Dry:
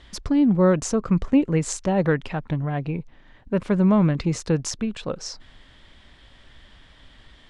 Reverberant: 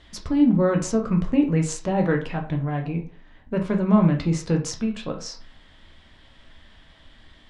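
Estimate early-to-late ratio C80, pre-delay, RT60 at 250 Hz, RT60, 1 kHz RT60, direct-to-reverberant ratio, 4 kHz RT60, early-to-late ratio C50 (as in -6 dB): 15.0 dB, 8 ms, 0.40 s, 0.40 s, 0.40 s, 2.0 dB, 0.25 s, 10.5 dB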